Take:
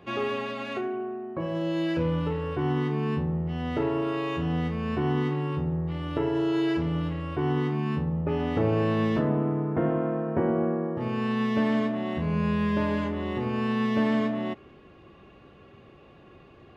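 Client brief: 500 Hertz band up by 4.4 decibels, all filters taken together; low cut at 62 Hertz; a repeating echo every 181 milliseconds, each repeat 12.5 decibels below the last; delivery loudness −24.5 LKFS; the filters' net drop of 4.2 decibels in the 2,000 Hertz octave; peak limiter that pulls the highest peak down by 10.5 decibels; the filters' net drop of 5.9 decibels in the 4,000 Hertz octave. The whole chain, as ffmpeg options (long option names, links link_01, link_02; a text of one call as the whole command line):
ffmpeg -i in.wav -af "highpass=62,equalizer=frequency=500:width_type=o:gain=6,equalizer=frequency=2000:width_type=o:gain=-4,equalizer=frequency=4000:width_type=o:gain=-7,alimiter=limit=-21.5dB:level=0:latency=1,aecho=1:1:181|362|543:0.237|0.0569|0.0137,volume=5dB" out.wav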